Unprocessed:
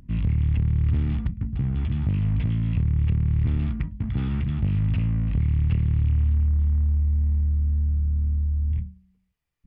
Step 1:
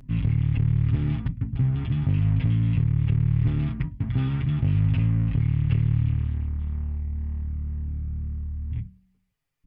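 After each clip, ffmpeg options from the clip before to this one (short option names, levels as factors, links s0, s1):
-af "aecho=1:1:7.4:0.68"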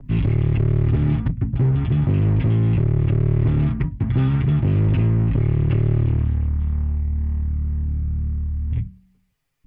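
-filter_complex "[0:a]acrossover=split=250|580|1300[s0][s1][s2][s3];[s0]volume=12.6,asoftclip=hard,volume=0.0794[s4];[s4][s1][s2][s3]amix=inputs=4:normalize=0,adynamicequalizer=threshold=0.00178:dfrequency=2200:dqfactor=0.7:tfrequency=2200:tqfactor=0.7:attack=5:release=100:ratio=0.375:range=3.5:mode=cutabove:tftype=highshelf,volume=2.24"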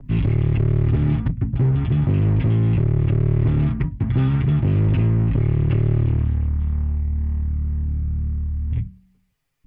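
-af anull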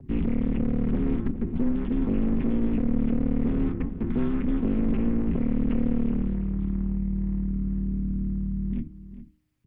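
-filter_complex "[0:a]aeval=exprs='val(0)*sin(2*PI*120*n/s)':c=same,acrossover=split=2500[s0][s1];[s1]acompressor=threshold=0.00141:ratio=4:attack=1:release=60[s2];[s0][s2]amix=inputs=2:normalize=0,asplit=2[s3][s4];[s4]adelay=408.2,volume=0.224,highshelf=f=4000:g=-9.18[s5];[s3][s5]amix=inputs=2:normalize=0,volume=0.708"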